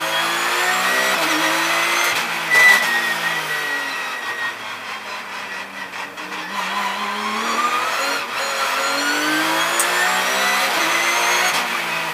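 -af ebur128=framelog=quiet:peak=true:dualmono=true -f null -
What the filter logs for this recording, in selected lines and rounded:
Integrated loudness:
  I:         -14.8 LUFS
  Threshold: -24.9 LUFS
Loudness range:
  LRA:         9.4 LU
  Threshold: -35.4 LUFS
  LRA low:   -21.7 LUFS
  LRA high:  -12.3 LUFS
True peak:
  Peak:       -2.2 dBFS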